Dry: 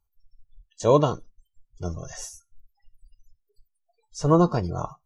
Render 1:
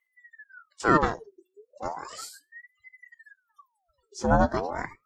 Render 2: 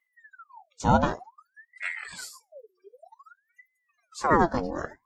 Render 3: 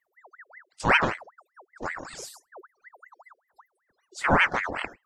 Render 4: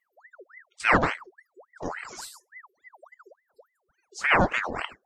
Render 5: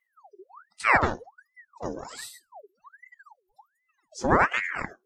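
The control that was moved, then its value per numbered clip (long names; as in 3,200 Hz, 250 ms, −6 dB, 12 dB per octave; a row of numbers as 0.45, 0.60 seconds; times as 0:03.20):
ring modulator whose carrier an LFO sweeps, at: 0.35, 0.54, 5.2, 3.5, 1.3 Hertz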